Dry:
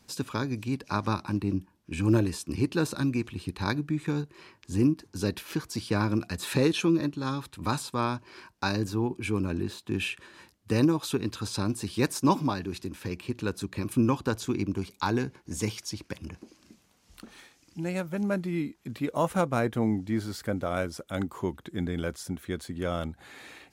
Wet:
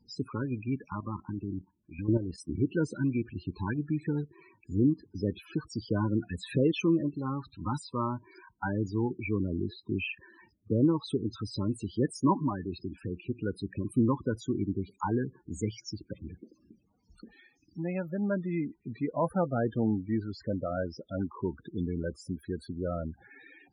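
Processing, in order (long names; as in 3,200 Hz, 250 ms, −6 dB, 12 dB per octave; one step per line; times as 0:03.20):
spectral peaks only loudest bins 16
0:00.90–0:02.38: output level in coarse steps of 11 dB
level −1.5 dB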